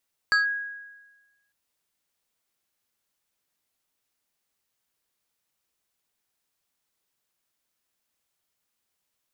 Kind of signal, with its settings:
two-operator FM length 1.20 s, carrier 1,650 Hz, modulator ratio 1.78, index 0.74, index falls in 0.14 s linear, decay 1.22 s, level −16 dB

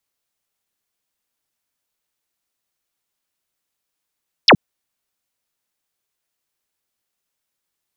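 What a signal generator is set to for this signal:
single falling chirp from 5,900 Hz, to 120 Hz, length 0.07 s sine, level −5 dB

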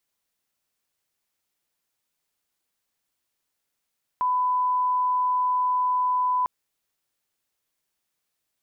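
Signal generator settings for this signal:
line-up tone −20 dBFS 2.25 s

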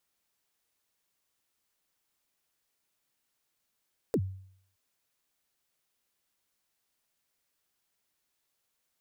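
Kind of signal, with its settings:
synth kick length 0.62 s, from 530 Hz, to 95 Hz, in 61 ms, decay 0.63 s, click on, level −21.5 dB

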